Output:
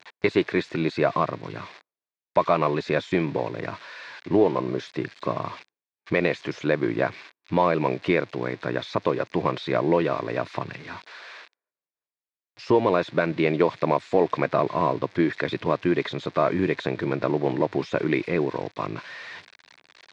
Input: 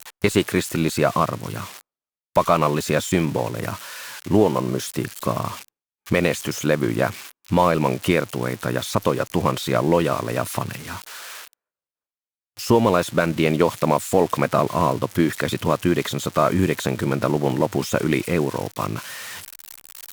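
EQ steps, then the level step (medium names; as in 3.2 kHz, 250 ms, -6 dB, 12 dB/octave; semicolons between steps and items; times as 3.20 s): cabinet simulation 180–3800 Hz, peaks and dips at 220 Hz -10 dB, 530 Hz -3 dB, 830 Hz -4 dB, 1.3 kHz -7 dB, 3 kHz -9 dB; 0.0 dB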